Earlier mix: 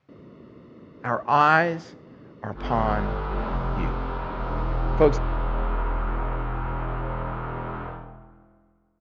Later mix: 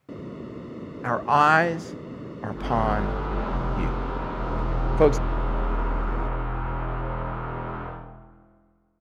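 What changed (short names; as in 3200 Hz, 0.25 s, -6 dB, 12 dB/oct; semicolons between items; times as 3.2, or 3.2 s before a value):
first sound +10.0 dB; master: remove LPF 5600 Hz 24 dB/oct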